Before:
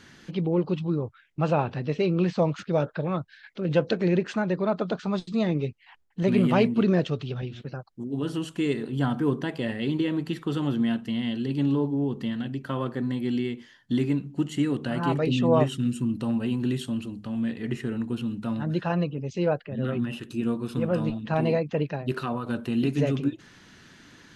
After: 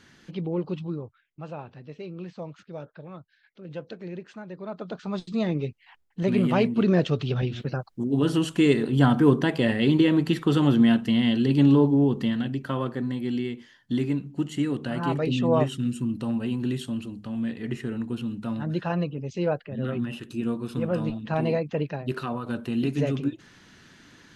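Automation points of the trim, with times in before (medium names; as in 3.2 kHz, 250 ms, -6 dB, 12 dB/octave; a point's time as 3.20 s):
0.84 s -4 dB
1.43 s -14 dB
4.47 s -14 dB
5.26 s -1 dB
6.72 s -1 dB
7.39 s +6.5 dB
11.94 s +6.5 dB
13.13 s -1 dB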